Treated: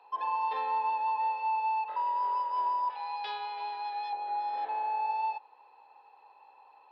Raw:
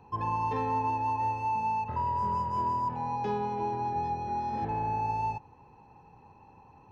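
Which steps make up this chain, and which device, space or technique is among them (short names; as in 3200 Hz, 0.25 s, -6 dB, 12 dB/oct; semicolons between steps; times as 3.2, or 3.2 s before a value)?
2.9–4.13 tilt shelf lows -9.5 dB, about 1300 Hz; musical greeting card (downsampling 11025 Hz; HPF 560 Hz 24 dB/oct; bell 3600 Hz +8 dB 0.41 oct)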